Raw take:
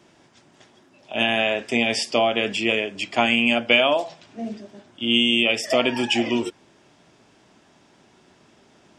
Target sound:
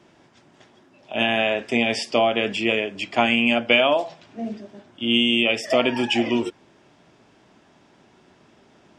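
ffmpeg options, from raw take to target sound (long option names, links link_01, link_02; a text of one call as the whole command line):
ffmpeg -i in.wav -af "highshelf=frequency=5000:gain=-8.5,volume=1dB" out.wav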